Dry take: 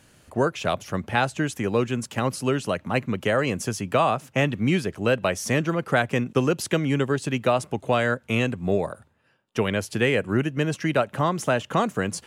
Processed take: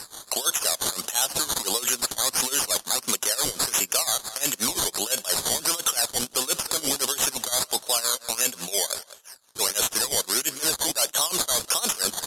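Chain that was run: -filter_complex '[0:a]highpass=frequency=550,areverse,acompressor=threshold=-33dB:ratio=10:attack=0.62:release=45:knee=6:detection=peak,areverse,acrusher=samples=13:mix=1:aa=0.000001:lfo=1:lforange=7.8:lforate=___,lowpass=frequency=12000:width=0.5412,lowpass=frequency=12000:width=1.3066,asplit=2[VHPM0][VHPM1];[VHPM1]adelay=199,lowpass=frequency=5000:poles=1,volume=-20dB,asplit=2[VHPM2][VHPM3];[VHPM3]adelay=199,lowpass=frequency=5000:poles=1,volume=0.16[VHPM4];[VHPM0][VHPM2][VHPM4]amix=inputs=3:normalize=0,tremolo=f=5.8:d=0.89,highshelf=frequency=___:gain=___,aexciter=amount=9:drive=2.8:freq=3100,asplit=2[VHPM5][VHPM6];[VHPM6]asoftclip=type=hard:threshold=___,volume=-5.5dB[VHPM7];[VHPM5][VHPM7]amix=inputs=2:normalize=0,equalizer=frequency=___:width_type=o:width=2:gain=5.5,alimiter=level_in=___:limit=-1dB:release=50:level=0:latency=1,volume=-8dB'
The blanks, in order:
1.5, 9400, 7.5, -18.5dB, 1200, 14.5dB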